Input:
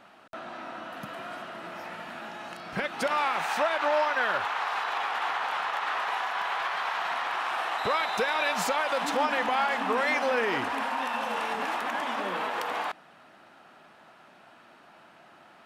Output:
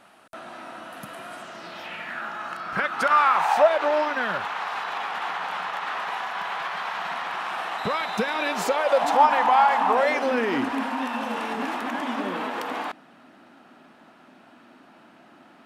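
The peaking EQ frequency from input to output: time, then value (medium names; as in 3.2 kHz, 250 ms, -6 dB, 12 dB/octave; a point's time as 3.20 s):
peaking EQ +12.5 dB 0.81 oct
1.32 s 10 kHz
2.27 s 1.3 kHz
3.27 s 1.3 kHz
4.32 s 180 Hz
8.12 s 180 Hz
9.23 s 900 Hz
9.88 s 900 Hz
10.34 s 260 Hz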